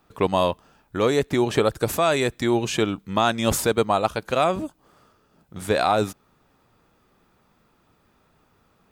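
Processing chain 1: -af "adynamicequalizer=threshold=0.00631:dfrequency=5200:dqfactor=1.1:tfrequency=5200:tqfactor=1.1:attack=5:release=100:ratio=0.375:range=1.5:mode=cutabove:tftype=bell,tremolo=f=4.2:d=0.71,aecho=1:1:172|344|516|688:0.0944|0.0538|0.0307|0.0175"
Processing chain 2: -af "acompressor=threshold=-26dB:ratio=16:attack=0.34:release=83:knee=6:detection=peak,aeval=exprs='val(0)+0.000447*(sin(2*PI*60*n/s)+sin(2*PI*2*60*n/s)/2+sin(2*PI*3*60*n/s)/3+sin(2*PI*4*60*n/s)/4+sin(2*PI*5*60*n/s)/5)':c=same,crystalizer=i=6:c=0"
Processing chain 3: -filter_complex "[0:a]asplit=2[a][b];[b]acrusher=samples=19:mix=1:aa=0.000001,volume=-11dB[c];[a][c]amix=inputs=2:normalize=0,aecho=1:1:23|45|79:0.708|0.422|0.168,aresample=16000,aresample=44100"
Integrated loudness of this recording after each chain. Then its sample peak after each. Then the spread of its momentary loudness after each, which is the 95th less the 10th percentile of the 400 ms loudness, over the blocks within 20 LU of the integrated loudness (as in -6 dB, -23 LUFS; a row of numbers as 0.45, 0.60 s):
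-26.0, -24.5, -19.0 LUFS; -7.0, -3.0, -4.0 dBFS; 10, 15, 7 LU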